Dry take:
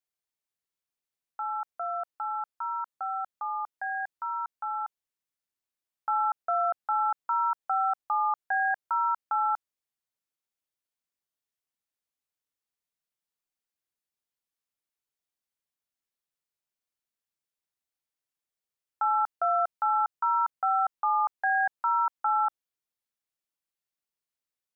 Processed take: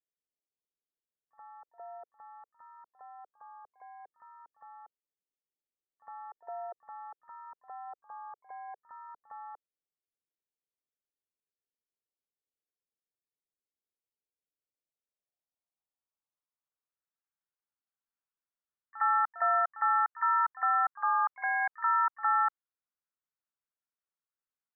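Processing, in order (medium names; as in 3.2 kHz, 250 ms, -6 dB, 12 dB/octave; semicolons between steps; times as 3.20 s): low-pass sweep 450 Hz -> 1.4 kHz, 14.43–17.00 s; pre-echo 59 ms -16.5 dB; harmony voices +5 st -11 dB; trim -8 dB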